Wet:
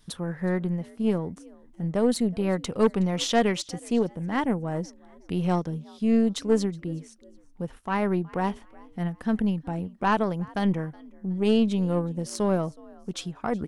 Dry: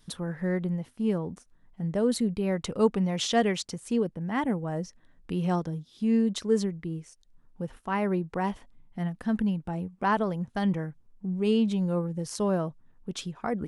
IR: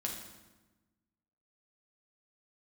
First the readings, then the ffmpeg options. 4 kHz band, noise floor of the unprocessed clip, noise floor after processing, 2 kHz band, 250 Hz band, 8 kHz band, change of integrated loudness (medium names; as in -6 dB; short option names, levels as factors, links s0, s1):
+2.0 dB, -60 dBFS, -53 dBFS, +2.0 dB, +2.0 dB, +1.5 dB, +2.0 dB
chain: -filter_complex "[0:a]asplit=3[s0][s1][s2];[s1]adelay=369,afreqshift=59,volume=0.0708[s3];[s2]adelay=738,afreqshift=118,volume=0.0234[s4];[s0][s3][s4]amix=inputs=3:normalize=0,aeval=exprs='0.299*(cos(1*acos(clip(val(0)/0.299,-1,1)))-cos(1*PI/2))+0.0473*(cos(4*acos(clip(val(0)/0.299,-1,1)))-cos(4*PI/2))+0.0422*(cos(5*acos(clip(val(0)/0.299,-1,1)))-cos(5*PI/2))+0.00841*(cos(6*acos(clip(val(0)/0.299,-1,1)))-cos(6*PI/2))+0.0237*(cos(7*acos(clip(val(0)/0.299,-1,1)))-cos(7*PI/2))':c=same"